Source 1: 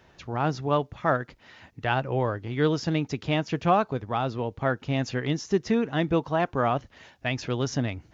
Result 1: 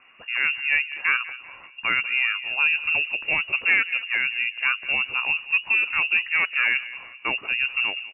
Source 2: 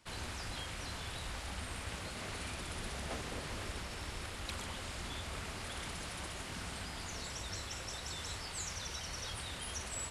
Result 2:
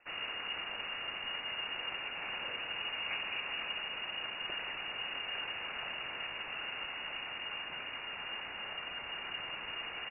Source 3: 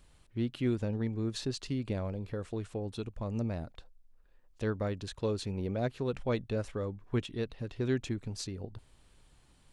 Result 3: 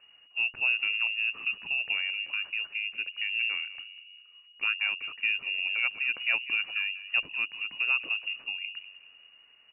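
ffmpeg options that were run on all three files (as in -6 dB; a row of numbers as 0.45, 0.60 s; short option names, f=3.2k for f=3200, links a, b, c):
-filter_complex "[0:a]aeval=exprs='0.355*(cos(1*acos(clip(val(0)/0.355,-1,1)))-cos(1*PI/2))+0.0447*(cos(2*acos(clip(val(0)/0.355,-1,1)))-cos(2*PI/2))+0.0316*(cos(4*acos(clip(val(0)/0.355,-1,1)))-cos(4*PI/2))+0.0316*(cos(5*acos(clip(val(0)/0.355,-1,1)))-cos(5*PI/2))':c=same,asplit=2[a][b];[b]adelay=195,lowpass=f=840:p=1,volume=-13dB,asplit=2[c][d];[d]adelay=195,lowpass=f=840:p=1,volume=0.49,asplit=2[e][f];[f]adelay=195,lowpass=f=840:p=1,volume=0.49,asplit=2[g][h];[h]adelay=195,lowpass=f=840:p=1,volume=0.49,asplit=2[i][j];[j]adelay=195,lowpass=f=840:p=1,volume=0.49[k];[a][c][e][g][i][k]amix=inputs=6:normalize=0,lowpass=f=2.5k:t=q:w=0.5098,lowpass=f=2.5k:t=q:w=0.6013,lowpass=f=2.5k:t=q:w=0.9,lowpass=f=2.5k:t=q:w=2.563,afreqshift=-2900"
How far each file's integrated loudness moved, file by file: +5.5, +3.5, +7.0 LU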